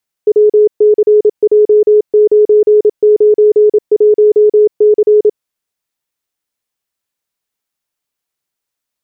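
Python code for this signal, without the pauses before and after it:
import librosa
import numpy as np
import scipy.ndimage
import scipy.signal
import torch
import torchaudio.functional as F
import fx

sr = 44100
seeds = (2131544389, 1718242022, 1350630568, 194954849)

y = fx.morse(sr, text='WCJ991C', wpm=27, hz=422.0, level_db=-3.5)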